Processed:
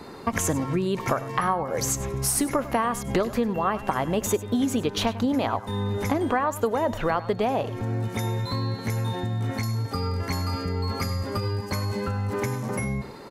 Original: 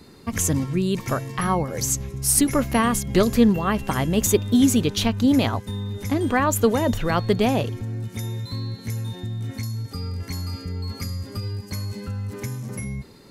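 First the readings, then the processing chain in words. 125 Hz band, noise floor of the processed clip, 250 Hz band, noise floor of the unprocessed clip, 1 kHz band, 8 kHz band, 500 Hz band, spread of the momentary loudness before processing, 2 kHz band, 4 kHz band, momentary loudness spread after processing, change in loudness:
-2.0 dB, -38 dBFS, -5.5 dB, -42 dBFS, +1.0 dB, -5.5 dB, -1.5 dB, 13 LU, -2.0 dB, -3.5 dB, 4 LU, -3.5 dB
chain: peaking EQ 860 Hz +14 dB 2.6 oct; compression 6:1, threshold -22 dBFS, peak gain reduction 16.5 dB; delay 99 ms -16 dB

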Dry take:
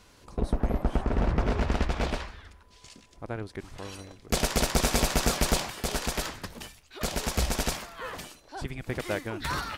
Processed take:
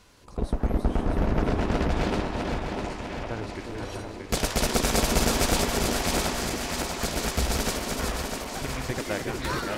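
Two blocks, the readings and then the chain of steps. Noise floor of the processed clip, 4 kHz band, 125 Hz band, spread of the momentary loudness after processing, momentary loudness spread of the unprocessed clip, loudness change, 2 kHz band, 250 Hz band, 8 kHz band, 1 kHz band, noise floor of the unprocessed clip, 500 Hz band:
-39 dBFS, +3.0 dB, +2.0 dB, 11 LU, 16 LU, +2.0 dB, +3.0 dB, +4.5 dB, +3.0 dB, +3.5 dB, -56 dBFS, +4.0 dB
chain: backward echo that repeats 325 ms, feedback 73%, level -4 dB; repeats whose band climbs or falls 366 ms, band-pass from 310 Hz, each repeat 1.4 oct, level -1 dB

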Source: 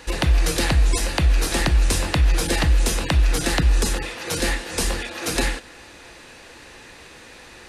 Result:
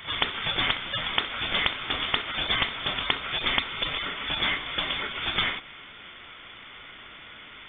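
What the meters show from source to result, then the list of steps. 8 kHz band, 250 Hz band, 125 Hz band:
under -40 dB, -12.5 dB, -20.0 dB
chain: high-pass 370 Hz 24 dB/octave; on a send: reverse echo 416 ms -15 dB; on the sum: frequency inversion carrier 3.9 kHz

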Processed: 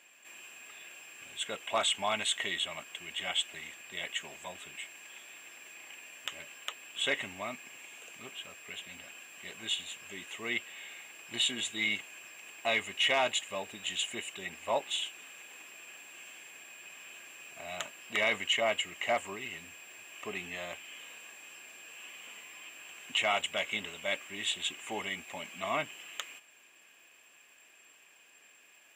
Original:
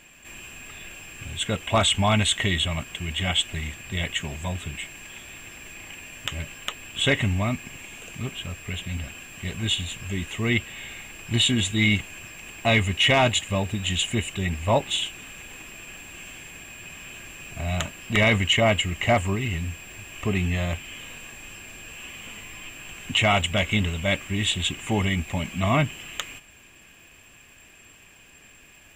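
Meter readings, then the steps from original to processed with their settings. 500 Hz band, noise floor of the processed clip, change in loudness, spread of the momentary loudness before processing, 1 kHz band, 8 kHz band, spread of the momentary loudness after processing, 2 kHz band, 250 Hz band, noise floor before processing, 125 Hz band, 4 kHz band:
-9.5 dB, -60 dBFS, -9.5 dB, 19 LU, -8.5 dB, -8.0 dB, 18 LU, -8.0 dB, -19.5 dB, -52 dBFS, -30.5 dB, -8.0 dB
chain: high-pass 450 Hz 12 dB/octave; trim -8 dB

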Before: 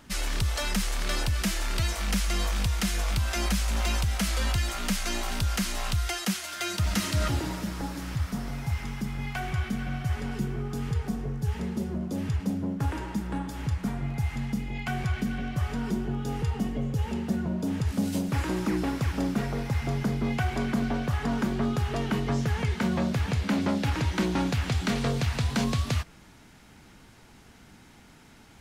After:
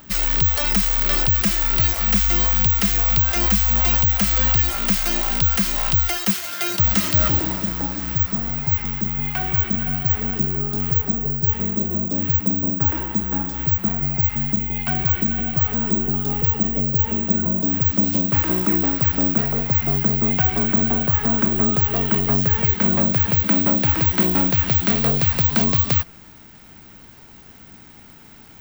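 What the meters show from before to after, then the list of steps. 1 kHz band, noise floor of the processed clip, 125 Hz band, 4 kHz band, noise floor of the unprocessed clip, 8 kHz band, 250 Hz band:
+5.5 dB, -45 dBFS, +5.5 dB, +5.5 dB, -53 dBFS, +5.5 dB, +5.5 dB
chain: careless resampling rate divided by 2×, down filtered, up zero stuff; trim +5.5 dB

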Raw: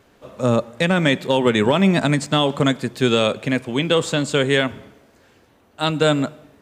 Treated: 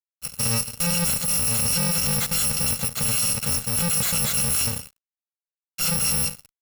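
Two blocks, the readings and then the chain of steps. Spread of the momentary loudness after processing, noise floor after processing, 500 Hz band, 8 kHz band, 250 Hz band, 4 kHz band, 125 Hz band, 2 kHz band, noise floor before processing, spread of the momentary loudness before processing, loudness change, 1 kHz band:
6 LU, under -85 dBFS, -18.0 dB, +14.5 dB, -12.5 dB, -3.0 dB, -6.0 dB, -9.0 dB, -56 dBFS, 7 LU, -1.5 dB, -10.5 dB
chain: bit-reversed sample order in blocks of 128 samples; fuzz box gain 35 dB, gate -40 dBFS; trim -7 dB

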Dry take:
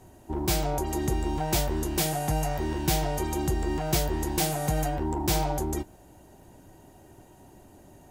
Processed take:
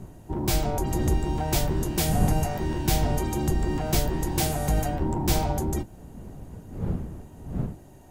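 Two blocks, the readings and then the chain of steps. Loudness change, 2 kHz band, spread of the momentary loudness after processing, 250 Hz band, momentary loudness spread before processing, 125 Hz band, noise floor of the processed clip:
+1.0 dB, 0.0 dB, 16 LU, +2.5 dB, 3 LU, +4.5 dB, -47 dBFS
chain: octave divider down 1 oct, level 0 dB; wind noise 170 Hz -33 dBFS

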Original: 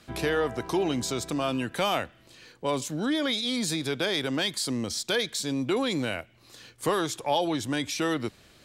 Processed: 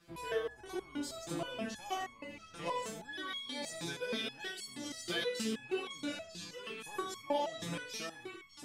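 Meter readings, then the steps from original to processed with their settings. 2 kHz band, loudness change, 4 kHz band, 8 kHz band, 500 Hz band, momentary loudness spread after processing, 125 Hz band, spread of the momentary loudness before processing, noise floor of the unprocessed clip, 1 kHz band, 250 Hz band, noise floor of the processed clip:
-9.5 dB, -11.5 dB, -11.0 dB, -11.5 dB, -10.5 dB, 9 LU, -15.0 dB, 5 LU, -58 dBFS, -9.5 dB, -13.5 dB, -57 dBFS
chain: gated-style reverb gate 110 ms rising, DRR 4.5 dB; ever faster or slower copies 465 ms, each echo -3 st, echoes 3, each echo -6 dB; resonator arpeggio 6.3 Hz 170–1100 Hz; trim +2 dB

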